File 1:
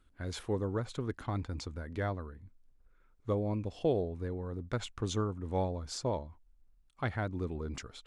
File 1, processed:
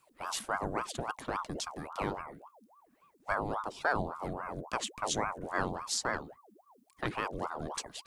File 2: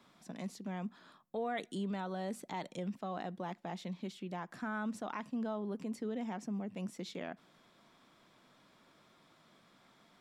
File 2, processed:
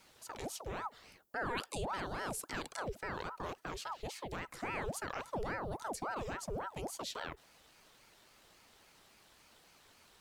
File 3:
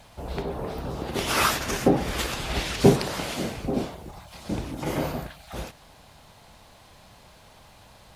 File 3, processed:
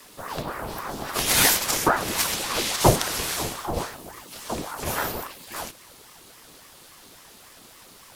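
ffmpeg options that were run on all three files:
-af "crystalizer=i=3:c=0,afreqshift=-18,aeval=exprs='val(0)*sin(2*PI*690*n/s+690*0.7/3.6*sin(2*PI*3.6*n/s))':channel_layout=same,volume=1.5dB"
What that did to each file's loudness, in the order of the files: +0.5, −0.5, +2.5 LU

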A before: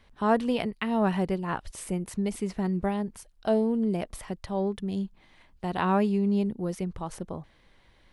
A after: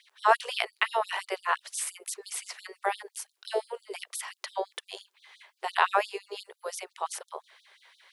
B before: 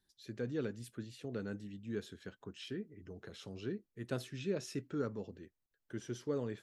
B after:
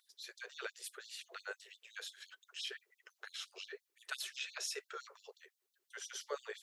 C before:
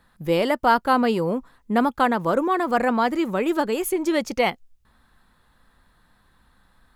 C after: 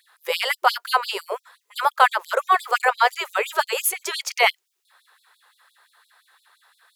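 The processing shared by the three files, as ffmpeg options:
-filter_complex "[0:a]acrossover=split=790[link_01][link_02];[link_01]tremolo=f=59:d=0.824[link_03];[link_02]acontrast=32[link_04];[link_03][link_04]amix=inputs=2:normalize=0,aeval=exprs='val(0)+0.0126*(sin(2*PI*60*n/s)+sin(2*PI*2*60*n/s)/2+sin(2*PI*3*60*n/s)/3+sin(2*PI*4*60*n/s)/4+sin(2*PI*5*60*n/s)/5)':channel_layout=same,afftfilt=real='re*gte(b*sr/1024,350*pow(3500/350,0.5+0.5*sin(2*PI*5.8*pts/sr)))':imag='im*gte(b*sr/1024,350*pow(3500/350,0.5+0.5*sin(2*PI*5.8*pts/sr)))':win_size=1024:overlap=0.75,volume=3dB"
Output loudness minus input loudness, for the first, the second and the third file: −2.5, −3.0, +0.5 LU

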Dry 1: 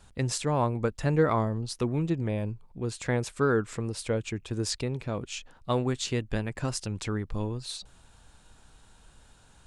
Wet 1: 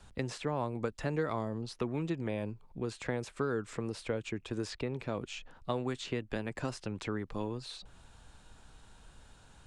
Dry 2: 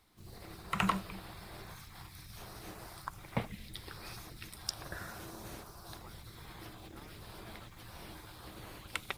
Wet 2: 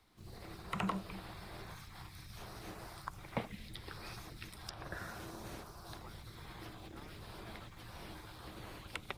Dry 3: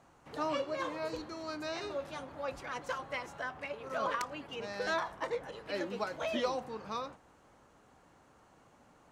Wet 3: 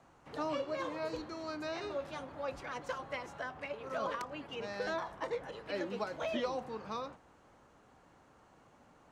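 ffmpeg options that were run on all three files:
-filter_complex "[0:a]highshelf=frequency=8300:gain=-7.5,acrossover=split=190|860|3200[link_01][link_02][link_03][link_04];[link_01]acompressor=threshold=-45dB:ratio=4[link_05];[link_02]acompressor=threshold=-33dB:ratio=4[link_06];[link_03]acompressor=threshold=-42dB:ratio=4[link_07];[link_04]acompressor=threshold=-51dB:ratio=4[link_08];[link_05][link_06][link_07][link_08]amix=inputs=4:normalize=0"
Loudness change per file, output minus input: −7.0, −3.5, −2.0 LU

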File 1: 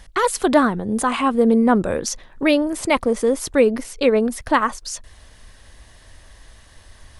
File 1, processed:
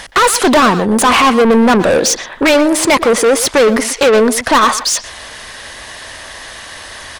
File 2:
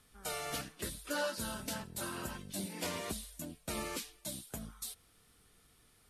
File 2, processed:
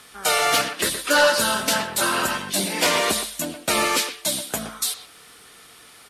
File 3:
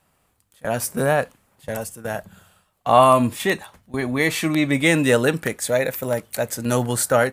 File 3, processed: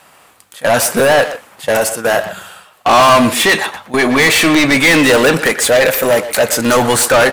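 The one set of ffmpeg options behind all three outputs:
-filter_complex "[0:a]asplit=2[link_01][link_02];[link_02]highpass=frequency=720:poles=1,volume=30dB,asoftclip=type=tanh:threshold=-1dB[link_03];[link_01][link_03]amix=inputs=2:normalize=0,lowpass=frequency=6200:poles=1,volume=-6dB,asplit=2[link_04][link_05];[link_05]adelay=120,highpass=300,lowpass=3400,asoftclip=type=hard:threshold=-10.5dB,volume=-9dB[link_06];[link_04][link_06]amix=inputs=2:normalize=0,volume=-1dB"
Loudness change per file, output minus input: +8.5, +19.5, +9.0 LU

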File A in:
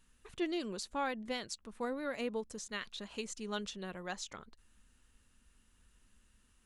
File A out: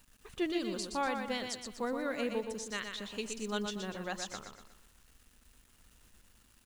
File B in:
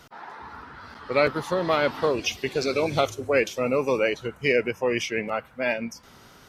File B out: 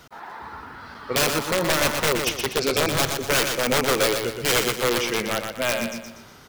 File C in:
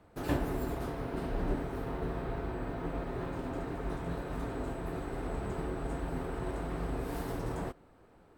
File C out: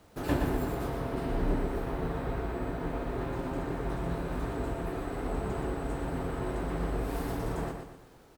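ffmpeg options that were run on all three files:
-af "aeval=exprs='(mod(6.68*val(0)+1,2)-1)/6.68':channel_layout=same,acrusher=bits=10:mix=0:aa=0.000001,aecho=1:1:121|242|363|484|605:0.501|0.205|0.0842|0.0345|0.0142,volume=2dB"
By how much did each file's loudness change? +3.0, +3.0, +3.0 LU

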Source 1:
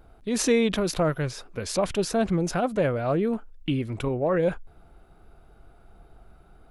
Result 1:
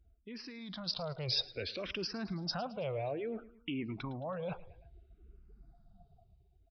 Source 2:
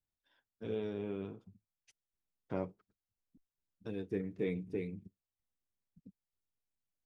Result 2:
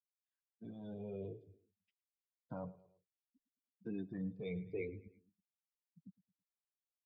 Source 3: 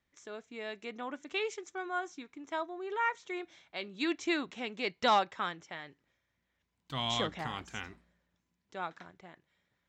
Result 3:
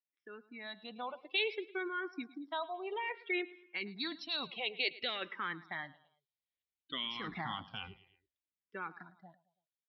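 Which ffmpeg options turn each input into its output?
-filter_complex "[0:a]afftdn=noise_reduction=28:noise_floor=-45,highpass=frequency=67:poles=1,equalizer=frequency=1400:width_type=o:width=1.1:gain=-3.5,areverse,acompressor=threshold=-35dB:ratio=12,areverse,alimiter=level_in=11dB:limit=-24dB:level=0:latency=1:release=55,volume=-11dB,dynaudnorm=framelen=140:gausssize=13:maxgain=8.5dB,crystalizer=i=8:c=0,aecho=1:1:109|218|327:0.112|0.0494|0.0217,aresample=11025,aresample=44100,asplit=2[link_01][link_02];[link_02]afreqshift=-0.59[link_03];[link_01][link_03]amix=inputs=2:normalize=1,volume=-4dB"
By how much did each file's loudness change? −12.5, −5.5, −3.0 LU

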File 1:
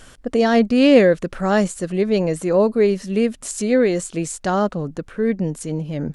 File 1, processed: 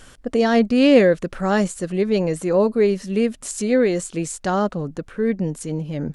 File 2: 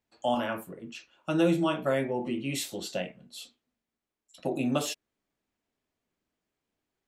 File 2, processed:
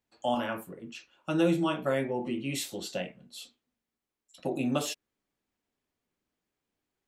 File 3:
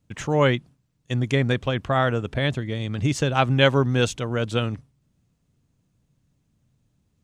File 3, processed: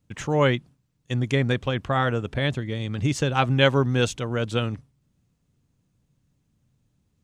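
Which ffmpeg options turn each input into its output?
-af "bandreject=frequency=650:width=19,volume=-1dB"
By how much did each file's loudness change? −1.0, −1.0, −1.0 LU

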